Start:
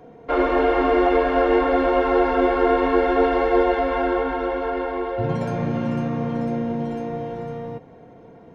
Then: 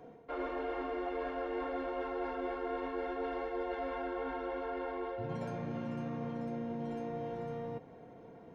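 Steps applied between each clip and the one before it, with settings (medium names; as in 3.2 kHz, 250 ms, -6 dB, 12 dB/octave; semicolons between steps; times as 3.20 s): bass shelf 120 Hz -4 dB; reverse; compression 5:1, threshold -29 dBFS, peak gain reduction 14 dB; reverse; trim -7 dB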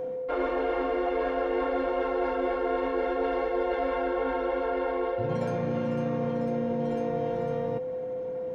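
whistle 510 Hz -39 dBFS; trim +8.5 dB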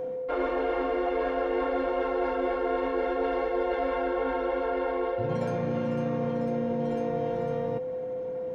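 no audible change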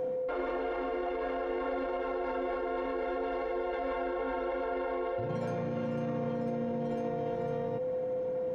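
peak limiter -26 dBFS, peak gain reduction 9.5 dB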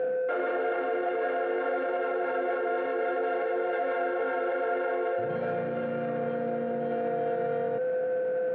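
in parallel at -3 dB: saturation -36.5 dBFS, distortion -10 dB; on the sum: cabinet simulation 190–3300 Hz, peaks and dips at 270 Hz -5 dB, 430 Hz +4 dB, 670 Hz +6 dB, 1 kHz -10 dB, 1.5 kHz +10 dB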